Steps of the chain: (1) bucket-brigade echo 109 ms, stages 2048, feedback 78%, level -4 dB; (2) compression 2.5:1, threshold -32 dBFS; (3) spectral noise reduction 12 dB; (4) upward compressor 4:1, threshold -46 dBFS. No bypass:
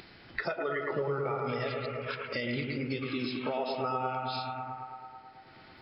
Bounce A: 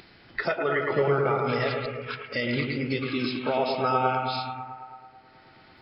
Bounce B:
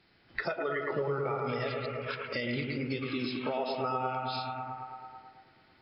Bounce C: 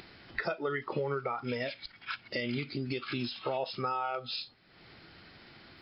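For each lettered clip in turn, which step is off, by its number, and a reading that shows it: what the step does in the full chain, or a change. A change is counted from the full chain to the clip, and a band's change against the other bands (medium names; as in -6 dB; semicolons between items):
2, mean gain reduction 4.0 dB; 4, momentary loudness spread change -5 LU; 1, momentary loudness spread change +6 LU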